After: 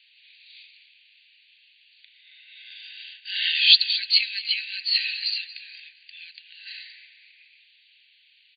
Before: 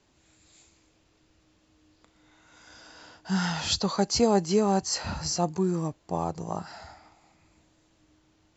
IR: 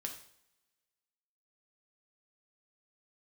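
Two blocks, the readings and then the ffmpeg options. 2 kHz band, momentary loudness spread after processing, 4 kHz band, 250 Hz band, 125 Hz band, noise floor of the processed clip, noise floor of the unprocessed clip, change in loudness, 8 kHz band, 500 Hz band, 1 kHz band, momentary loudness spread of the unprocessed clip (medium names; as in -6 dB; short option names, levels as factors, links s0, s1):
+11.5 dB, 25 LU, +13.5 dB, under -40 dB, under -40 dB, -60 dBFS, -66 dBFS, +7.0 dB, no reading, under -40 dB, under -40 dB, 13 LU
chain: -filter_complex "[0:a]highshelf=f=1900:t=q:w=3:g=10.5,asplit=2[s0][s1];[s1]adelay=231,lowpass=f=2900:p=1,volume=0.266,asplit=2[s2][s3];[s3]adelay=231,lowpass=f=2900:p=1,volume=0.51,asplit=2[s4][s5];[s5]adelay=231,lowpass=f=2900:p=1,volume=0.51,asplit=2[s6][s7];[s7]adelay=231,lowpass=f=2900:p=1,volume=0.51,asplit=2[s8][s9];[s9]adelay=231,lowpass=f=2900:p=1,volume=0.51[s10];[s0][s2][s4][s6][s8][s10]amix=inputs=6:normalize=0,afftfilt=real='re*between(b*sr/4096,1500,4700)':imag='im*between(b*sr/4096,1500,4700)':win_size=4096:overlap=0.75,volume=1.19"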